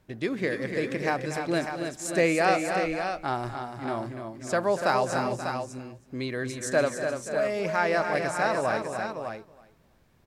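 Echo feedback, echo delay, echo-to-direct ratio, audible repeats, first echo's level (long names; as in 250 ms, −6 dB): repeats not evenly spaced, 237 ms, −3.0 dB, 7, −13.0 dB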